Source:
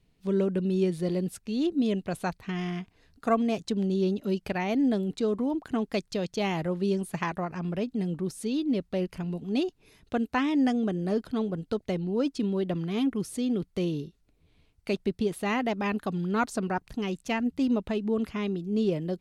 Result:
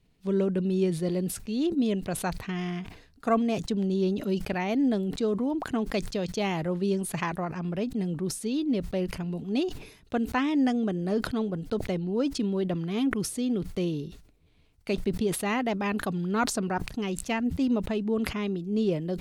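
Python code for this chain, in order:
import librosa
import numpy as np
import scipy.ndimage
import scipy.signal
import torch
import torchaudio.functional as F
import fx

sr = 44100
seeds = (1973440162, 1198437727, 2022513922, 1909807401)

y = fx.sustainer(x, sr, db_per_s=91.0)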